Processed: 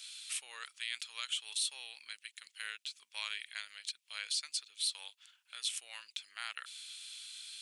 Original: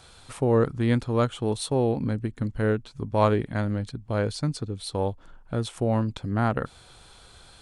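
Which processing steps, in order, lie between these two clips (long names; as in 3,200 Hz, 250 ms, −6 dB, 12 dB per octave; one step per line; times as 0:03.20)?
Chebyshev high-pass filter 2,600 Hz, order 3
brickwall limiter −31 dBFS, peak gain reduction 9.5 dB
level +7 dB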